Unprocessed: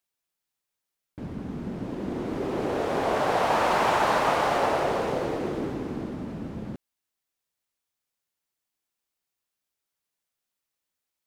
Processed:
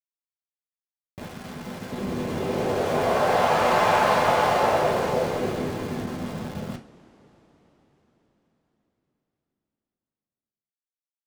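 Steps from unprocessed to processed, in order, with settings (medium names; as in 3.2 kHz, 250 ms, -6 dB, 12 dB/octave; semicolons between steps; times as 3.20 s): small samples zeroed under -35 dBFS; 1.22–1.92 s: bass shelf 430 Hz -8.5 dB; reverberation, pre-delay 3 ms, DRR 0.5 dB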